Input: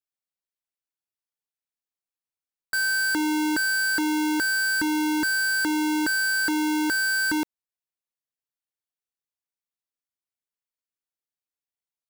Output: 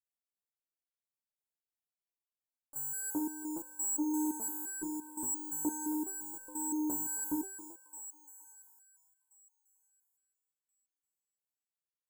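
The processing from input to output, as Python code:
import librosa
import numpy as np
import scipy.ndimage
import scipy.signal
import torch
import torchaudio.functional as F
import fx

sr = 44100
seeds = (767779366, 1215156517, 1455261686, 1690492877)

y = scipy.signal.sosfilt(scipy.signal.cheby1(4, 1.0, [1000.0, 7100.0], 'bandstop', fs=sr, output='sos'), x)
y = fx.echo_thinned(y, sr, ms=271, feedback_pct=66, hz=700.0, wet_db=-6.5)
y = fx.resonator_held(y, sr, hz=5.8, low_hz=73.0, high_hz=510.0)
y = y * librosa.db_to_amplitude(4.0)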